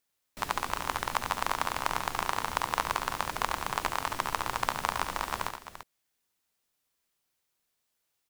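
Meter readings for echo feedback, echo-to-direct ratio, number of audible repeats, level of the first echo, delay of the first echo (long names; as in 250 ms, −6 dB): repeats not evenly spaced, −5.5 dB, 3, −7.5 dB, 71 ms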